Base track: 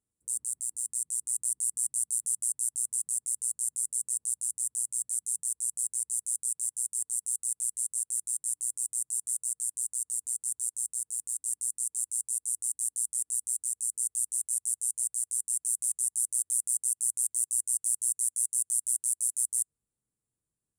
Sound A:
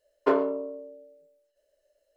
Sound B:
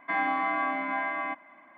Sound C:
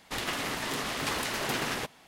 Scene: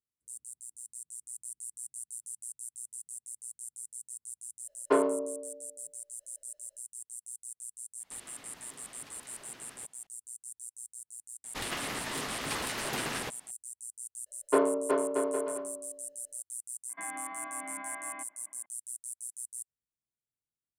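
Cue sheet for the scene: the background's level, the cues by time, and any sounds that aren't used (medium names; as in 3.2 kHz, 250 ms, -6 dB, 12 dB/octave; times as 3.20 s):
base track -12.5 dB
4.64 s: add A -2 dB
8.00 s: add C -13 dB + compression, threshold -36 dBFS
11.44 s: add C -3.5 dB
14.26 s: add A -2 dB + bouncing-ball echo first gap 370 ms, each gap 0.7×, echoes 5
16.89 s: add B -11 dB + peak limiter -22 dBFS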